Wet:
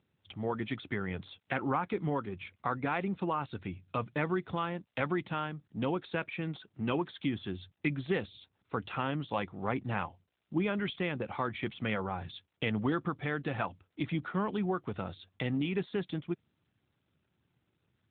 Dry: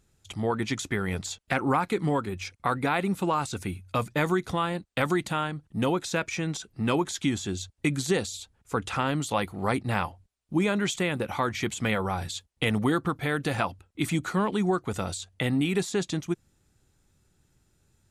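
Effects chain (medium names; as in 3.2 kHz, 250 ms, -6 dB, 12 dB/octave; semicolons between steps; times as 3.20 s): 7.40–8.33 s: dynamic bell 1.9 kHz, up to +3 dB, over -46 dBFS, Q 1.2; trim -6 dB; AMR-NB 12.2 kbps 8 kHz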